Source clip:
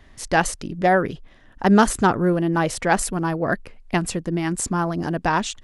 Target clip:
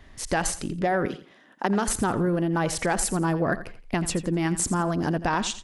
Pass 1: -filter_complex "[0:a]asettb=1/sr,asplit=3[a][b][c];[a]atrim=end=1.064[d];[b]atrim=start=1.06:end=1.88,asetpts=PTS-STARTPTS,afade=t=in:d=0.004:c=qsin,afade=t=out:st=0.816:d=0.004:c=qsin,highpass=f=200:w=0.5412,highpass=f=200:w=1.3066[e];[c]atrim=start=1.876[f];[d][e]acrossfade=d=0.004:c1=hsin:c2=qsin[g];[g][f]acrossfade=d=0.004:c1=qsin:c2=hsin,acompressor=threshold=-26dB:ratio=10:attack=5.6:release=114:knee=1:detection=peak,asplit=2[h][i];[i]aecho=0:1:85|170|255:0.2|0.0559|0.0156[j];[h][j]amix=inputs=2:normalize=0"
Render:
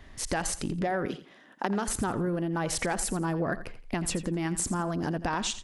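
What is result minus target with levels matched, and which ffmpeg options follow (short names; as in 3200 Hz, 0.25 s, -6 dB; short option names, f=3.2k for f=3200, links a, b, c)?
compressor: peak gain reduction +5.5 dB
-filter_complex "[0:a]asettb=1/sr,asplit=3[a][b][c];[a]atrim=end=1.064[d];[b]atrim=start=1.06:end=1.88,asetpts=PTS-STARTPTS,afade=t=in:d=0.004:c=qsin,afade=t=out:st=0.816:d=0.004:c=qsin,highpass=f=200:w=0.5412,highpass=f=200:w=1.3066[e];[c]atrim=start=1.876[f];[d][e]acrossfade=d=0.004:c1=hsin:c2=qsin[g];[g][f]acrossfade=d=0.004:c1=qsin:c2=hsin,acompressor=threshold=-20dB:ratio=10:attack=5.6:release=114:knee=1:detection=peak,asplit=2[h][i];[i]aecho=0:1:85|170|255:0.2|0.0559|0.0156[j];[h][j]amix=inputs=2:normalize=0"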